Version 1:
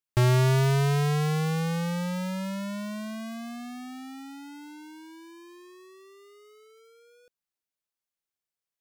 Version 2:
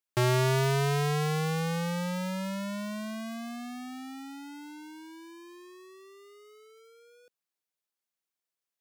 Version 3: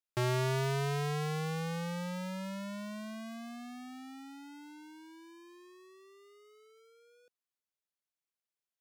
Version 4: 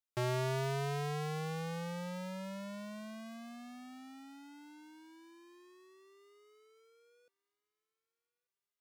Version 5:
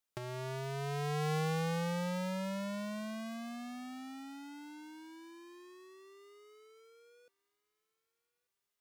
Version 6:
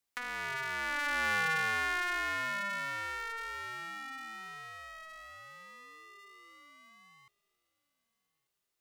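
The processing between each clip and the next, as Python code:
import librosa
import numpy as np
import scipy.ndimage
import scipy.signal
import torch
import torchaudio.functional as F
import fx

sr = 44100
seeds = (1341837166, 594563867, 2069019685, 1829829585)

y1 = scipy.signal.sosfilt(scipy.signal.butter(2, 170.0, 'highpass', fs=sr, output='sos'), x)
y2 = fx.high_shelf(y1, sr, hz=9800.0, db=-4.0)
y2 = y2 * 10.0 ** (-6.0 / 20.0)
y3 = fx.dynamic_eq(y2, sr, hz=640.0, q=1.9, threshold_db=-49.0, ratio=4.0, max_db=4)
y3 = fx.echo_thinned(y3, sr, ms=1191, feedback_pct=35, hz=860.0, wet_db=-23.5)
y3 = y3 * 10.0 ** (-4.0 / 20.0)
y4 = fx.over_compress(y3, sr, threshold_db=-38.0, ratio=-0.5)
y4 = y4 * 10.0 ** (3.5 / 20.0)
y5 = y4 * np.sin(2.0 * np.pi * 1600.0 * np.arange(len(y4)) / sr)
y5 = y5 * 10.0 ** (5.5 / 20.0)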